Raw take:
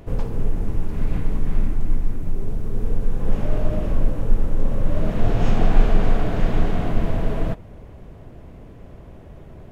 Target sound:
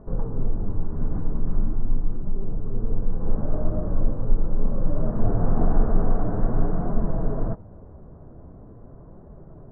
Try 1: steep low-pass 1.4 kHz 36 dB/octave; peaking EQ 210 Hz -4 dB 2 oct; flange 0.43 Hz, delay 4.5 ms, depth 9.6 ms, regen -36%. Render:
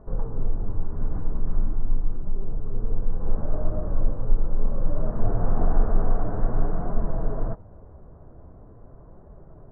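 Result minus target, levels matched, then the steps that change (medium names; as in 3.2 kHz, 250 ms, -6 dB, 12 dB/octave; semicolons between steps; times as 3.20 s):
250 Hz band -3.5 dB
change: peaking EQ 210 Hz +2 dB 2 oct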